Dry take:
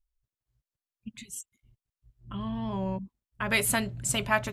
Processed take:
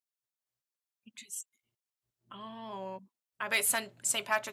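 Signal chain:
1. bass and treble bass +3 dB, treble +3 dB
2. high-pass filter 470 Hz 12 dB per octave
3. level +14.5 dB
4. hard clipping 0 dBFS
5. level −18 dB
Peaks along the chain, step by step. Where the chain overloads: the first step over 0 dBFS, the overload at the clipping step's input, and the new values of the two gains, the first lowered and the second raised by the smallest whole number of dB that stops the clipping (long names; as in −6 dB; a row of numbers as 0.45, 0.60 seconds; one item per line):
−9.5, −10.5, +4.0, 0.0, −18.0 dBFS
step 3, 4.0 dB
step 3 +10.5 dB, step 5 −14 dB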